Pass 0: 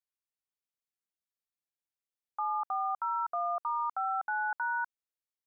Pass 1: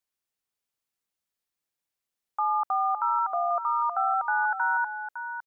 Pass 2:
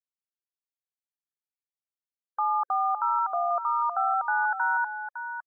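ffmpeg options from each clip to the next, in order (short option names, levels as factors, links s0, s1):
-af "aecho=1:1:558:0.335,volume=2.11"
-af "afftfilt=real='re*gte(hypot(re,im),0.00398)':imag='im*gte(hypot(re,im),0.00398)':win_size=1024:overlap=0.75"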